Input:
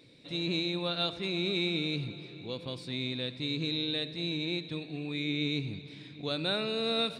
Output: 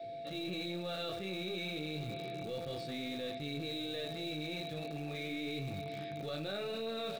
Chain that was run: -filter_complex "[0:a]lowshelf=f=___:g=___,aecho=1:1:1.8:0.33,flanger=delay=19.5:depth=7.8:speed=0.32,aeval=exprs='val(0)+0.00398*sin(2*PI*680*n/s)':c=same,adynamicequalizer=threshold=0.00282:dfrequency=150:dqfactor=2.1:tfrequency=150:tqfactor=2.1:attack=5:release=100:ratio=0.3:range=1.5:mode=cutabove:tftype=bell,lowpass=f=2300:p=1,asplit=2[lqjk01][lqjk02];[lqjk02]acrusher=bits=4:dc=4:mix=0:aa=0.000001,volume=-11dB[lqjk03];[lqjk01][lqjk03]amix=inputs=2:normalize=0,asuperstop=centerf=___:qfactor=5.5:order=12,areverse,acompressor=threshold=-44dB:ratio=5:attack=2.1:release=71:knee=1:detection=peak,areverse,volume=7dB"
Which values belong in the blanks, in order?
97, -3.5, 1000